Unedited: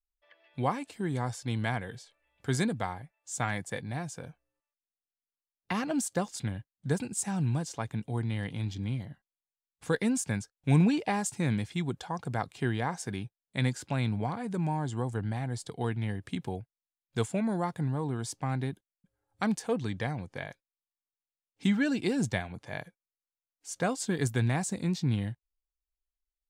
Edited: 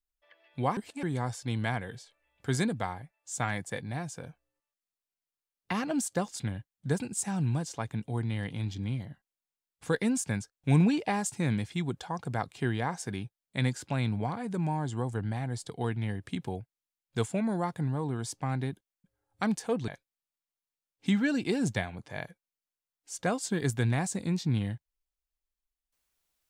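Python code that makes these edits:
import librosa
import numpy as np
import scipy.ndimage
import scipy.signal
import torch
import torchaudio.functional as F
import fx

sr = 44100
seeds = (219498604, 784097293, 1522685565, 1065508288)

y = fx.edit(x, sr, fx.reverse_span(start_s=0.77, length_s=0.26),
    fx.cut(start_s=19.88, length_s=0.57), tone=tone)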